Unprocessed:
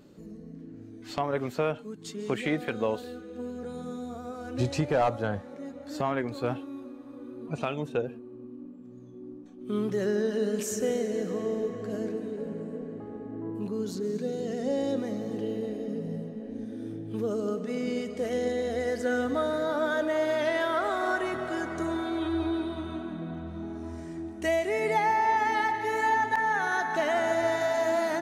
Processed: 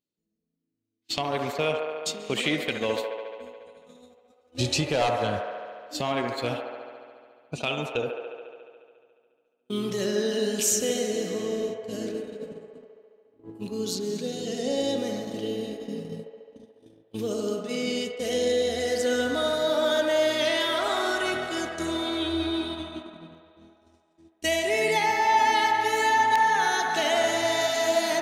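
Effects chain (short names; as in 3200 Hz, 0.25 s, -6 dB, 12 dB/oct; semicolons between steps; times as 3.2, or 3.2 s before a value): resonant high shelf 2200 Hz +11 dB, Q 1.5; gate -33 dBFS, range -39 dB; band-limited delay 71 ms, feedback 79%, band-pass 960 Hz, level -3 dB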